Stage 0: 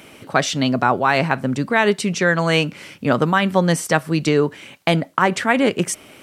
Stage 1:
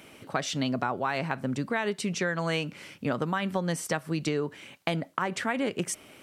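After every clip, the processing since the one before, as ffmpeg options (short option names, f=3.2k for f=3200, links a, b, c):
-af "acompressor=threshold=-17dB:ratio=6,volume=-7.5dB"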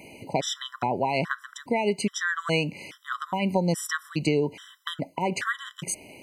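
-af "afftfilt=real='re*gt(sin(2*PI*1.2*pts/sr)*(1-2*mod(floor(b*sr/1024/1000),2)),0)':imag='im*gt(sin(2*PI*1.2*pts/sr)*(1-2*mod(floor(b*sr/1024/1000),2)),0)':win_size=1024:overlap=0.75,volume=5.5dB"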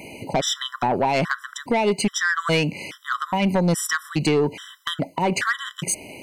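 -af "asoftclip=type=tanh:threshold=-20.5dB,volume=7.5dB"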